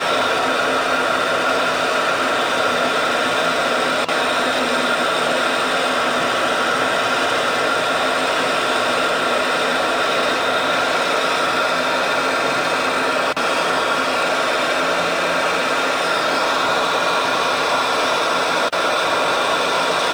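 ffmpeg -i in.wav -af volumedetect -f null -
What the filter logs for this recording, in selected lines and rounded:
mean_volume: -18.4 dB
max_volume: -5.7 dB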